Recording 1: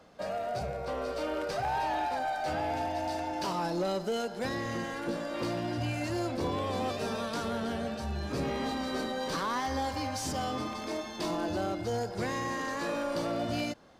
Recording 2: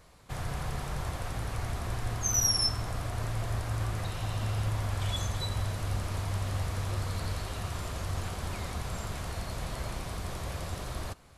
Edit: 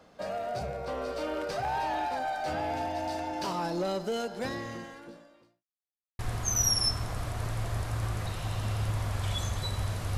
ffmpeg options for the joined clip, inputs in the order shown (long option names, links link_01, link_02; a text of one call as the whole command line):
ffmpeg -i cue0.wav -i cue1.wav -filter_complex "[0:a]apad=whole_dur=10.17,atrim=end=10.17,asplit=2[link_01][link_02];[link_01]atrim=end=5.65,asetpts=PTS-STARTPTS,afade=type=out:start_time=4.43:duration=1.22:curve=qua[link_03];[link_02]atrim=start=5.65:end=6.19,asetpts=PTS-STARTPTS,volume=0[link_04];[1:a]atrim=start=1.97:end=5.95,asetpts=PTS-STARTPTS,afade=type=in:duration=0.004:curve=hsin[link_05];[link_03][link_04][link_05]concat=n=3:v=0:a=1" out.wav